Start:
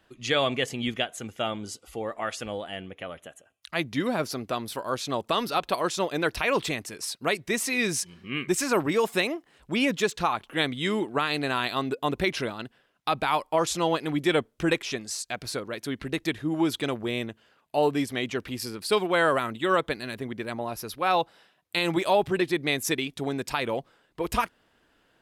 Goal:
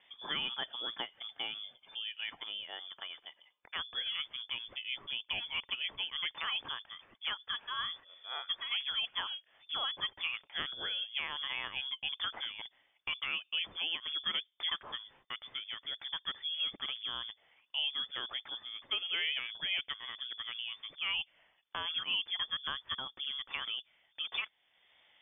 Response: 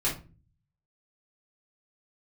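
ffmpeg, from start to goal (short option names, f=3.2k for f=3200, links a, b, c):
-af "acompressor=threshold=-54dB:ratio=1.5,lowpass=f=3.1k:t=q:w=0.5098,lowpass=f=3.1k:t=q:w=0.6013,lowpass=f=3.1k:t=q:w=0.9,lowpass=f=3.1k:t=q:w=2.563,afreqshift=-3600"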